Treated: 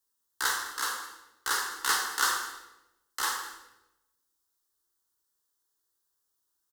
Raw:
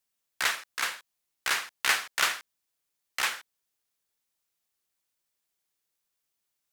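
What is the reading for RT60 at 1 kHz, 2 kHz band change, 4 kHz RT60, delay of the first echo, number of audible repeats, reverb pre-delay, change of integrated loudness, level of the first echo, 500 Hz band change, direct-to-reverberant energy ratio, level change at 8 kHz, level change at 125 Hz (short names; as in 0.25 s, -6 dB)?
0.85 s, -2.5 dB, 0.80 s, 0.205 s, 1, 11 ms, -1.0 dB, -17.0 dB, -1.5 dB, 0.5 dB, +2.5 dB, n/a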